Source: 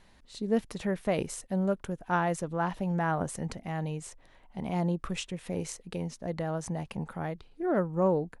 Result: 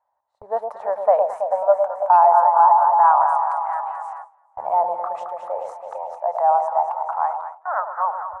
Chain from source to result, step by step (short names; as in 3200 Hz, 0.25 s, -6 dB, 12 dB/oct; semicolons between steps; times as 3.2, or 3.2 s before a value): tape stop at the end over 0.35 s; LFO high-pass saw up 0.24 Hz 300–1600 Hz; on a send: echo with dull and thin repeats by turns 0.109 s, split 950 Hz, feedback 79%, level -5.5 dB; on the sum: gate with hold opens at -31 dBFS; EQ curve 110 Hz 0 dB, 170 Hz -29 dB, 380 Hz -28 dB, 590 Hz +2 dB, 890 Hz +12 dB, 2700 Hz -25 dB; de-esser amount 85%; maximiser +12 dB; gain -4.5 dB